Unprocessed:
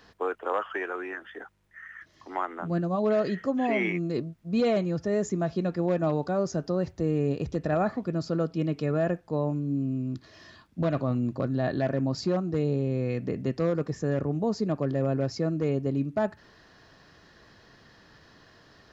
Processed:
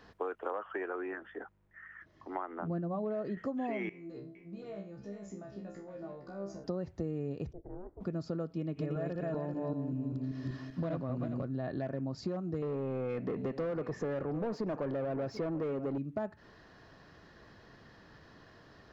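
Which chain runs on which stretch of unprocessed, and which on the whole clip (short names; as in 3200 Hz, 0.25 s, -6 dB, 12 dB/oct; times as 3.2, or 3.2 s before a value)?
0.51–3.37 high shelf 2300 Hz -10 dB + notches 60/120/180 Hz
3.89–6.64 compressor 5:1, threshold -32 dBFS + resonator 66 Hz, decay 0.35 s, mix 100% + echo 0.461 s -10 dB
7.51–8 spectral limiter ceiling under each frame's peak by 13 dB + ladder band-pass 180 Hz, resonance 30% + ring modulator 180 Hz
8.57–11.42 regenerating reverse delay 0.194 s, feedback 43%, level -1 dB + delay with a stepping band-pass 0.185 s, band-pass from 2100 Hz, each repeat 0.7 oct, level -11 dB
12.62–15.98 echo 0.737 s -19 dB + overdrive pedal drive 22 dB, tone 1400 Hz, clips at -16 dBFS
whole clip: high shelf 2500 Hz -8.5 dB; compressor 6:1, threshold -33 dBFS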